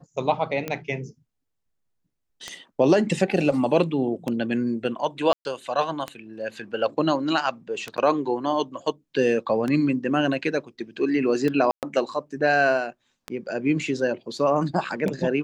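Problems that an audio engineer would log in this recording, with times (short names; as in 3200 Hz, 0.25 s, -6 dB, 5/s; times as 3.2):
tick 33 1/3 rpm -14 dBFS
5.33–5.45 gap 0.121 s
7.97–7.98 gap 8.5 ms
11.71–11.83 gap 0.118 s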